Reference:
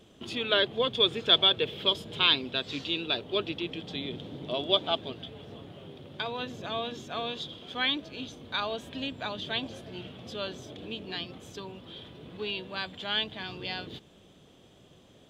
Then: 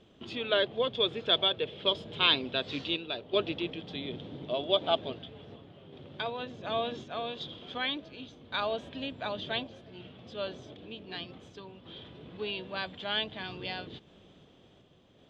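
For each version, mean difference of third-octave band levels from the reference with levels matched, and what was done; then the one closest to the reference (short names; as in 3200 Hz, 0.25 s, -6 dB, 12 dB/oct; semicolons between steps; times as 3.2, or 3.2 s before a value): 2.5 dB: LPF 4400 Hz 12 dB/oct; dynamic EQ 600 Hz, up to +5 dB, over -45 dBFS, Q 2.1; random-step tremolo 2.7 Hz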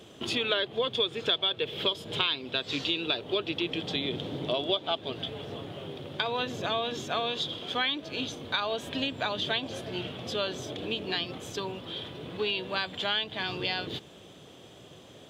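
4.5 dB: bell 210 Hz -5 dB 0.84 oct; compressor 5:1, threshold -34 dBFS, peak gain reduction 16.5 dB; HPF 98 Hz; gain +8 dB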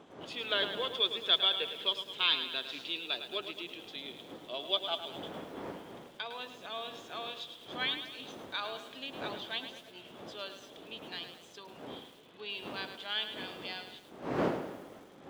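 7.5 dB: wind noise 340 Hz -32 dBFS; weighting filter A; lo-fi delay 0.107 s, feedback 55%, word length 8-bit, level -9 dB; gain -6.5 dB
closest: first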